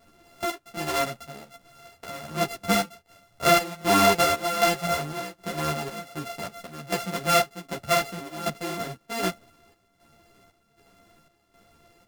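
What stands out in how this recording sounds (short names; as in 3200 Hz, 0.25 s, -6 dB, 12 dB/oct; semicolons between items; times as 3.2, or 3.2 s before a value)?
a buzz of ramps at a fixed pitch in blocks of 64 samples; chopped level 1.3 Hz, depth 65%, duty 65%; a shimmering, thickened sound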